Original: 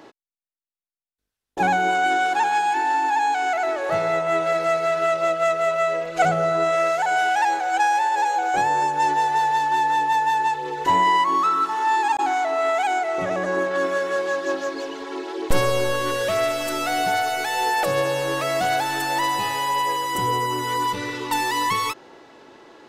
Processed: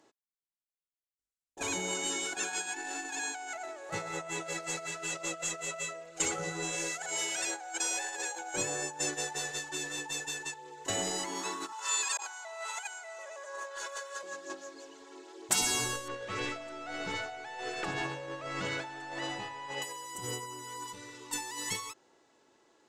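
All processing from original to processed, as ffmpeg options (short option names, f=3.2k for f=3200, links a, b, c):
-filter_complex "[0:a]asettb=1/sr,asplit=3[a][b][c];[a]atrim=end=11.724[d];[b]atrim=start=11.72:end=14.23,asetpts=PTS-STARTPTS,afade=t=in:d=0.004:c=qsin,afade=t=out:st=2.506:d=0.004:c=qsin,highpass=f=620:w=0.5412,highpass=f=620:w=1.3066,aecho=1:1:2:0.86,atrim=end_sample=110691[e];[c]atrim=start=14.226[f];[d][e]acrossfade=d=0.004:c1=hsin:c2=qsin[g];[g][f]acrossfade=d=0.004:c1=qsin:c2=hsin,asettb=1/sr,asplit=3[h][i][j];[h]atrim=end=16.084[k];[i]atrim=start=16.08:end=19.82,asetpts=PTS-STARTPTS,afade=t=in:d=0.004:c=qsin,afade=t=out:st=3.736:d=0.004:c=qsin,aeval=exprs='val(0)+0.5*0.0299*sgn(val(0))':c=same,lowpass=2.7k,aecho=1:1:79|158|237|316|395:0.1|0.059|0.0348|0.0205|0.0121,atrim=end_sample=164934[l];[j]atrim=start=19.816[m];[k][l]acrossfade=d=0.004:c1=hsin:c2=qsin[n];[n][m]acrossfade=d=0.004:c1=qsin:c2=hsin,agate=range=-16dB:threshold=-20dB:ratio=16:detection=peak,afftfilt=real='re*lt(hypot(re,im),0.2)':imag='im*lt(hypot(re,im),0.2)':win_size=1024:overlap=0.75,equalizer=f=7.4k:t=o:w=0.85:g=14.5,volume=-4dB"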